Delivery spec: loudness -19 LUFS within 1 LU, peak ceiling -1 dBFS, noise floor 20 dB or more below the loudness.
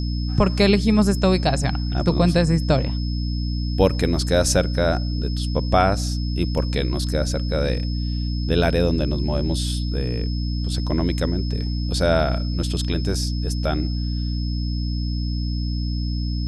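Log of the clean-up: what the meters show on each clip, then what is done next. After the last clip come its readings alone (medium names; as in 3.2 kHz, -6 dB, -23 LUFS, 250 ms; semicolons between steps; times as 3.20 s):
hum 60 Hz; highest harmonic 300 Hz; hum level -21 dBFS; steady tone 5.2 kHz; tone level -36 dBFS; loudness -22.0 LUFS; peak level -3.5 dBFS; loudness target -19.0 LUFS
-> de-hum 60 Hz, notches 5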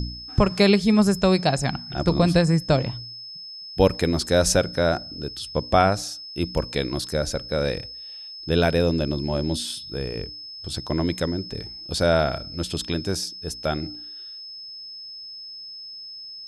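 hum not found; steady tone 5.2 kHz; tone level -36 dBFS
-> band-stop 5.2 kHz, Q 30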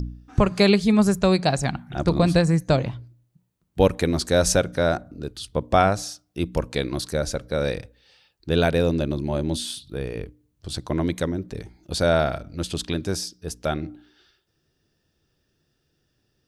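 steady tone not found; loudness -23.5 LUFS; peak level -4.5 dBFS; loudness target -19.0 LUFS
-> trim +4.5 dB; peak limiter -1 dBFS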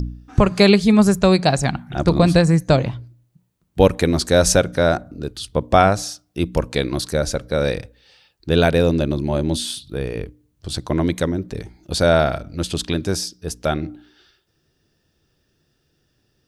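loudness -19.0 LUFS; peak level -1.0 dBFS; noise floor -68 dBFS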